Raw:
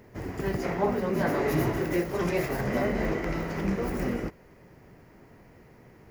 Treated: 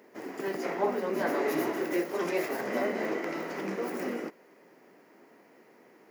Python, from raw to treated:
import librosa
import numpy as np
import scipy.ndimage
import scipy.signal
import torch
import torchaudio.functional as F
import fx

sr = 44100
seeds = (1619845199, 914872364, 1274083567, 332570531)

y = scipy.signal.sosfilt(scipy.signal.butter(4, 250.0, 'highpass', fs=sr, output='sos'), x)
y = F.gain(torch.from_numpy(y), -1.5).numpy()